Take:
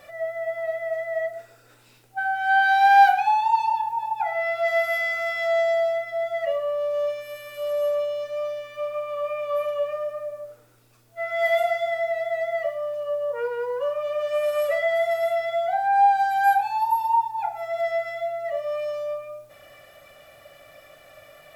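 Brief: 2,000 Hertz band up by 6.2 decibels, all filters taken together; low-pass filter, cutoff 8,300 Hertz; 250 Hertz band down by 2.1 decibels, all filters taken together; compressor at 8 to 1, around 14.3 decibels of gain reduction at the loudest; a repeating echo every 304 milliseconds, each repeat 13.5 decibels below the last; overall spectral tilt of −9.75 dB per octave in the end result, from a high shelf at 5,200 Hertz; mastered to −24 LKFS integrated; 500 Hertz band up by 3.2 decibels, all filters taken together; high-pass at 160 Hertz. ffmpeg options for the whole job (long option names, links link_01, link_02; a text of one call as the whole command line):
ffmpeg -i in.wav -af "highpass=160,lowpass=8300,equalizer=frequency=250:width_type=o:gain=-4,equalizer=frequency=500:width_type=o:gain=4.5,equalizer=frequency=2000:width_type=o:gain=6.5,highshelf=frequency=5200:gain=7,acompressor=threshold=-23dB:ratio=8,aecho=1:1:304|608:0.211|0.0444,volume=2.5dB" out.wav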